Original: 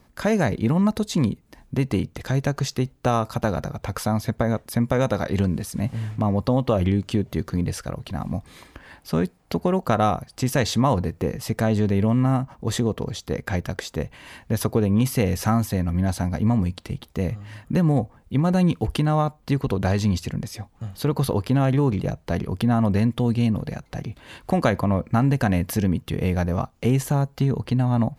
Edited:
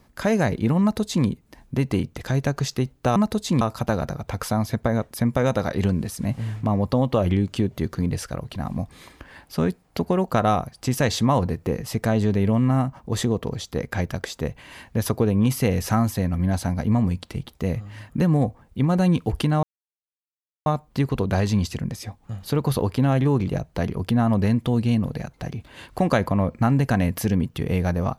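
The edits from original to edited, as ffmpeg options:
ffmpeg -i in.wav -filter_complex "[0:a]asplit=4[link_01][link_02][link_03][link_04];[link_01]atrim=end=3.162[link_05];[link_02]atrim=start=0.808:end=1.262[link_06];[link_03]atrim=start=3.158:end=19.18,asetpts=PTS-STARTPTS,afade=type=out:start_time=16.018:duration=0.004:curve=hsin,apad=pad_dur=1.03[link_07];[link_04]atrim=start=19.18,asetpts=PTS-STARTPTS,afade=type=in:duration=0.004:curve=hsin[link_08];[link_05][link_06]acrossfade=duration=0.004:curve1=hsin:curve2=hsin[link_09];[link_07][link_08]concat=n=2:v=0:a=1[link_10];[link_09][link_10]acrossfade=duration=0.004:curve1=hsin:curve2=hsin" out.wav

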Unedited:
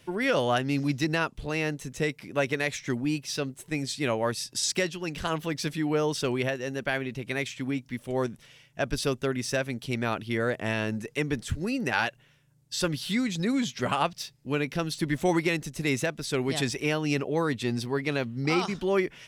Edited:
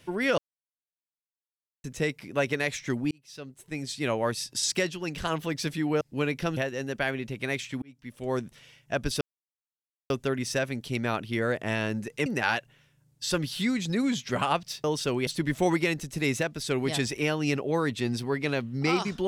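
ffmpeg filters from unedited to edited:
ffmpeg -i in.wav -filter_complex "[0:a]asplit=11[link_01][link_02][link_03][link_04][link_05][link_06][link_07][link_08][link_09][link_10][link_11];[link_01]atrim=end=0.38,asetpts=PTS-STARTPTS,afade=type=out:start_time=0.376:duration=0.004:curve=hsin[link_12];[link_02]atrim=start=0.38:end=1.84,asetpts=PTS-STARTPTS,volume=0[link_13];[link_03]atrim=start=1.84:end=3.11,asetpts=PTS-STARTPTS,afade=type=in:duration=0.004:curve=hsin,afade=type=out:start_time=1.266:duration=0.004:curve=hsin[link_14];[link_04]atrim=start=3.11:end=6.012,asetpts=PTS-STARTPTS,afade=type=in:duration=1.06[link_15];[link_05]atrim=start=14.338:end=14.902[link_16];[link_06]atrim=start=6.438:end=7.69,asetpts=PTS-STARTPTS,afade=type=out:start_time=1.248:duration=0.004:curve=hsin[link_17];[link_07]atrim=start=7.69:end=9.08,asetpts=PTS-STARTPTS,afade=type=in:duration=0.59,afade=type=out:start_time=1.386:duration=0.004:curve=hsin,apad=pad_dur=0.89[link_18];[link_08]atrim=start=9.08:end=11.242,asetpts=PTS-STARTPTS,afade=type=in:duration=0.004:curve=hsin[link_19];[link_09]atrim=start=11.758:end=14.342[link_20];[link_10]atrim=start=6.008:end=6.442[link_21];[link_11]atrim=start=14.898[link_22];[link_12][link_13][link_14][link_15]concat=n=4:v=0:a=1[link_23];[link_23][link_16]acrossfade=duration=0.004:curve1=hsin:curve2=hsin[link_24];[link_17][link_18][link_19]concat=n=3:v=0:a=1[link_25];[link_24][link_25]acrossfade=duration=0.004:curve1=hsin:curve2=hsin[link_26];[link_26][link_20]acrossfade=duration=0.004:curve1=hsin:curve2=hsin[link_27];[link_27][link_21]acrossfade=duration=0.004:curve1=hsin:curve2=hsin[link_28];[link_28][link_22]acrossfade=duration=0.004:curve1=hsin:curve2=hsin" out.wav

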